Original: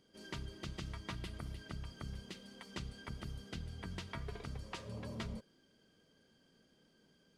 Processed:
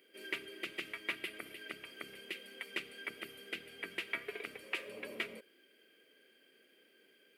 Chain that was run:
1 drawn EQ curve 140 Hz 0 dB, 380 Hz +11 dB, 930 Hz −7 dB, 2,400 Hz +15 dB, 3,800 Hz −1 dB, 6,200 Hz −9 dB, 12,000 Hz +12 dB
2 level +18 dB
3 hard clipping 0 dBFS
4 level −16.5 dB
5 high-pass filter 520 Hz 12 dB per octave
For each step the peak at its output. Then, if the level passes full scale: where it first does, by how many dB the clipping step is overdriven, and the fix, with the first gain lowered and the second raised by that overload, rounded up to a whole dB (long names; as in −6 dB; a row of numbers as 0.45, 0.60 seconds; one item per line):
−21.5, −3.5, −3.5, −20.0, −21.0 dBFS
no step passes full scale